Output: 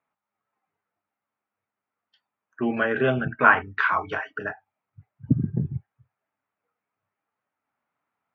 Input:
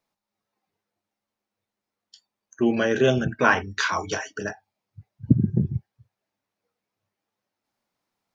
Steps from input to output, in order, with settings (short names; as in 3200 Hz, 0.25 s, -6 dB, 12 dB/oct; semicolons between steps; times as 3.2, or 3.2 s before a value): speaker cabinet 100–2500 Hz, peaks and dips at 110 Hz -4 dB, 200 Hz -8 dB, 350 Hz -7 dB, 520 Hz -5 dB, 1300 Hz +6 dB; gain +1 dB